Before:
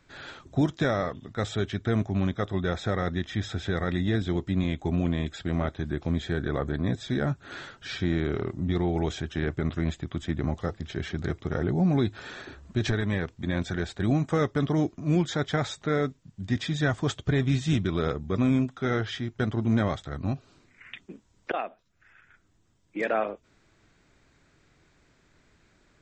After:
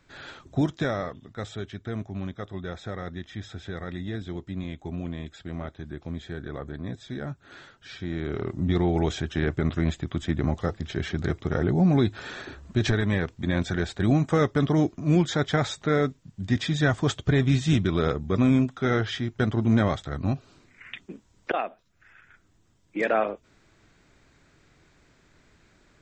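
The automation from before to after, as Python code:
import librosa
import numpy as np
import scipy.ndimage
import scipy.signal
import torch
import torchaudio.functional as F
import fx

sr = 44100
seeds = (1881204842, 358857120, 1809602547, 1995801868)

y = fx.gain(x, sr, db=fx.line((0.62, 0.0), (1.68, -7.0), (8.01, -7.0), (8.61, 3.0)))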